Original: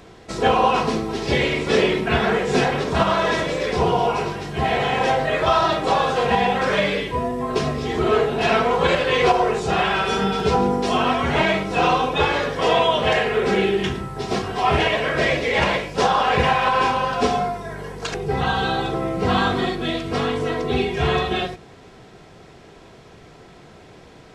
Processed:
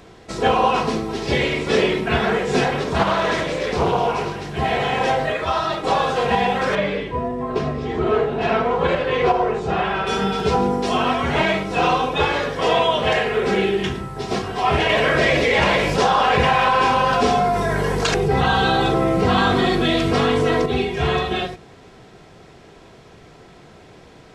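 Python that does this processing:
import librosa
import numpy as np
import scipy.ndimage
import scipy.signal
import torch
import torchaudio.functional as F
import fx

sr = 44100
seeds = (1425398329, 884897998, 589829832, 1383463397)

y = fx.doppler_dist(x, sr, depth_ms=0.34, at=(2.98, 4.56))
y = fx.ensemble(y, sr, at=(5.32, 5.83), fade=0.02)
y = fx.lowpass(y, sr, hz=1800.0, slope=6, at=(6.75, 10.07))
y = fx.env_flatten(y, sr, amount_pct=70, at=(14.89, 20.66))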